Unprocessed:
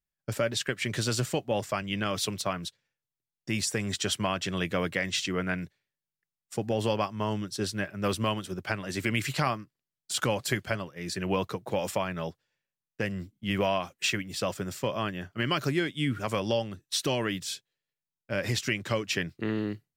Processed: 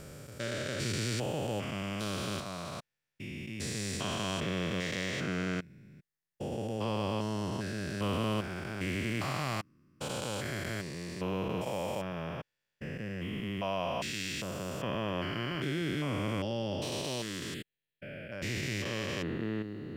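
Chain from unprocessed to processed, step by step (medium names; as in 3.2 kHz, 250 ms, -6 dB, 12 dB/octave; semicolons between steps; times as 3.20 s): spectrogram pixelated in time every 400 ms; 17.54–18.32 s: static phaser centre 2.5 kHz, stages 4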